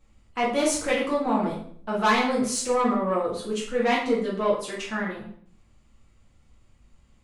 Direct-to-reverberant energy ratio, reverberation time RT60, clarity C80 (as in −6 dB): −6.5 dB, 0.60 s, 9.0 dB